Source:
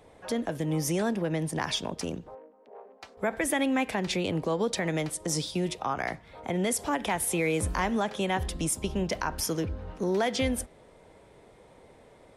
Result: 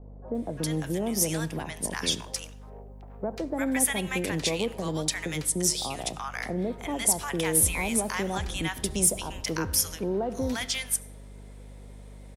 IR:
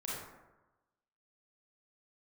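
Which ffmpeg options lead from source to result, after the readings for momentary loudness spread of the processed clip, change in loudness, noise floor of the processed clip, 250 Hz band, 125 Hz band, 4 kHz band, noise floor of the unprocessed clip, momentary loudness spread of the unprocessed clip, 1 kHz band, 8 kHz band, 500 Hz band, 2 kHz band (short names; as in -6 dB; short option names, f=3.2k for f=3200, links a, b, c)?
11 LU, +2.0 dB, -45 dBFS, -1.0 dB, -0.5 dB, +3.5 dB, -56 dBFS, 7 LU, -3.0 dB, +8.0 dB, -1.5 dB, +0.5 dB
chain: -filter_complex "[0:a]aeval=exprs='val(0)+0.00708*(sin(2*PI*50*n/s)+sin(2*PI*2*50*n/s)/2+sin(2*PI*3*50*n/s)/3+sin(2*PI*4*50*n/s)/4+sin(2*PI*5*50*n/s)/5)':c=same,crystalizer=i=2:c=0,acontrast=69,acrossover=split=910[a][b];[b]adelay=350[c];[a][c]amix=inputs=2:normalize=0,asplit=2[d][e];[1:a]atrim=start_sample=2205,asetrate=41895,aresample=44100,adelay=31[f];[e][f]afir=irnorm=-1:irlink=0,volume=-20.5dB[g];[d][g]amix=inputs=2:normalize=0,volume=-7.5dB"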